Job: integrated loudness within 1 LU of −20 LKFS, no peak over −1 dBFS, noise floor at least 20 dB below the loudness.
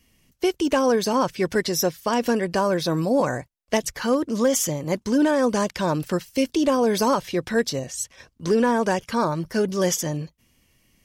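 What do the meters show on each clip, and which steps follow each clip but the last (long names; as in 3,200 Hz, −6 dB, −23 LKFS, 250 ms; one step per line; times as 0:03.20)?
share of clipped samples 0.2%; peaks flattened at −12.0 dBFS; integrated loudness −23.0 LKFS; sample peak −12.0 dBFS; target loudness −20.0 LKFS
→ clipped peaks rebuilt −12 dBFS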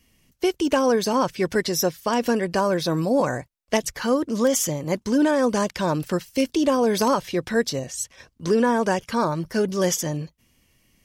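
share of clipped samples 0.0%; integrated loudness −23.0 LKFS; sample peak −4.5 dBFS; target loudness −20.0 LKFS
→ level +3 dB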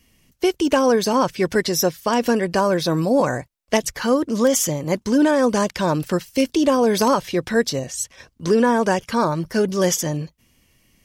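integrated loudness −20.0 LKFS; sample peak −1.5 dBFS; background noise floor −62 dBFS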